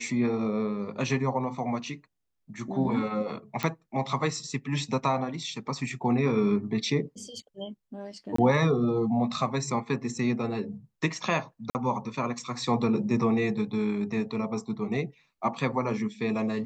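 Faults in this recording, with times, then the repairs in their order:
3.63 s: pop -14 dBFS
8.36–8.38 s: dropout 24 ms
11.70–11.75 s: dropout 49 ms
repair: de-click; interpolate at 8.36 s, 24 ms; interpolate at 11.70 s, 49 ms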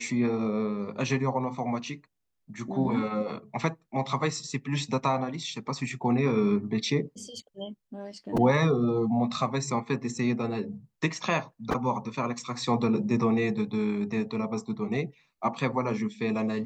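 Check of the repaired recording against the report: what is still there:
nothing left

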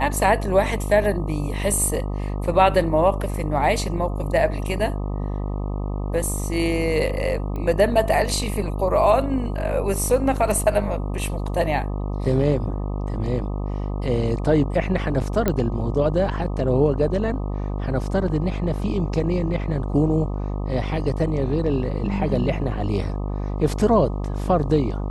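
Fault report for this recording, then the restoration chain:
buzz 50 Hz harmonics 25 -26 dBFS
7.56 s: pop -20 dBFS
15.48 s: pop -7 dBFS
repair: de-click; de-hum 50 Hz, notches 25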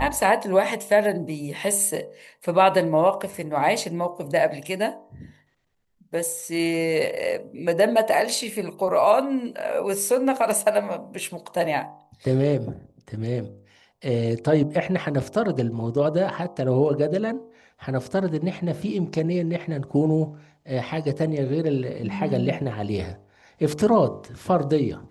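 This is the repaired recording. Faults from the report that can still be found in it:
nothing left

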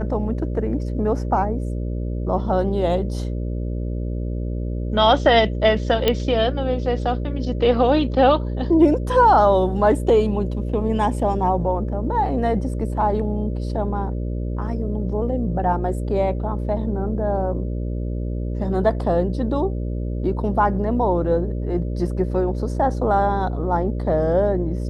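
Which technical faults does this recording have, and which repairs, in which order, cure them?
buzz 60 Hz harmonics 10 -25 dBFS
6.08 s: pop -6 dBFS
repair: de-click; de-hum 60 Hz, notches 10

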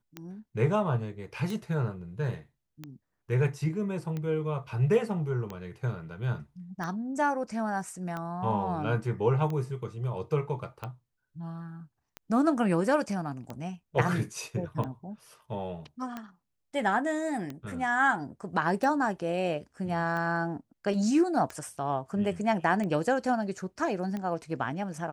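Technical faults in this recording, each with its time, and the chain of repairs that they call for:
tick 45 rpm -23 dBFS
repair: de-click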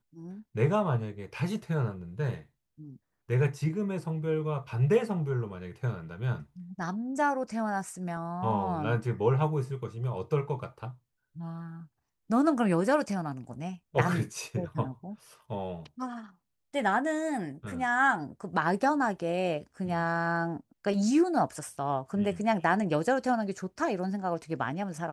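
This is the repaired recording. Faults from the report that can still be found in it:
nothing left

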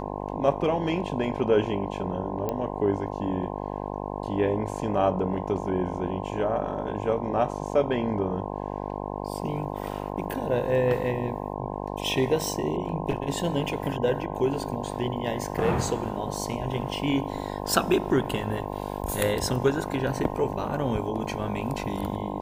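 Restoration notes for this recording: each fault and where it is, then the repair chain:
buzz 50 Hz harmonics 21 -33 dBFS
2.49 s: pop -15 dBFS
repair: de-click; de-hum 50 Hz, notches 21

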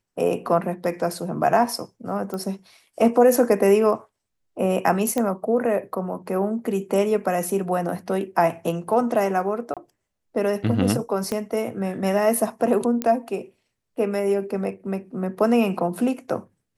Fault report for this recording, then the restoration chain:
2.34 s: pop -18 dBFS
5.18 s: pop -11 dBFS
9.74–9.77 s: dropout 27 ms
11.32 s: pop -13 dBFS
13.02 s: pop -10 dBFS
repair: de-click; interpolate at 9.74 s, 27 ms

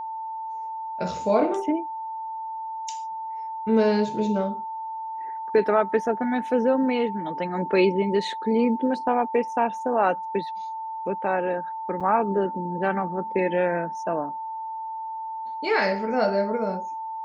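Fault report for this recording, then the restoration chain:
whine 890 Hz -30 dBFS
12.00–12.01 s: dropout 6.6 ms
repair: band-stop 890 Hz, Q 30; interpolate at 12.00 s, 6.6 ms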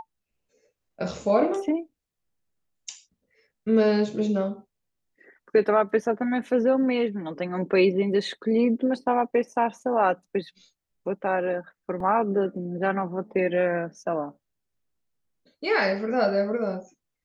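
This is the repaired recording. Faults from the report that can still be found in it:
nothing left

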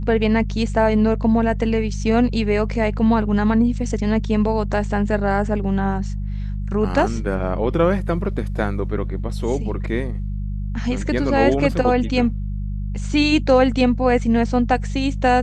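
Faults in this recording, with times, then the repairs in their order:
hum 50 Hz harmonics 4 -25 dBFS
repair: de-hum 50 Hz, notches 4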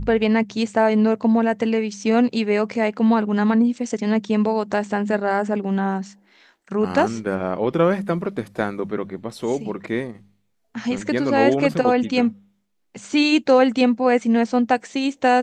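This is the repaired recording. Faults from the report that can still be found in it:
nothing left

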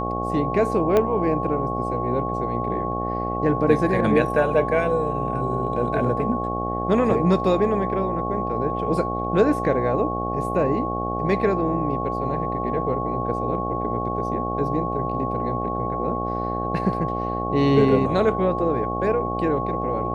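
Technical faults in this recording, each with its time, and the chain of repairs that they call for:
buzz 60 Hz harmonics 14 -28 dBFS
whine 1.1 kHz -27 dBFS
0.97 s: pop -8 dBFS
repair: de-click; de-hum 60 Hz, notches 14; band-stop 1.1 kHz, Q 30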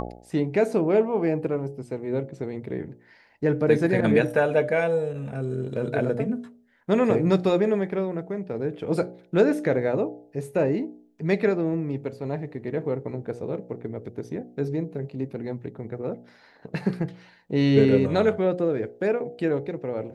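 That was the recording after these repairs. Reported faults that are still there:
0.97 s: pop

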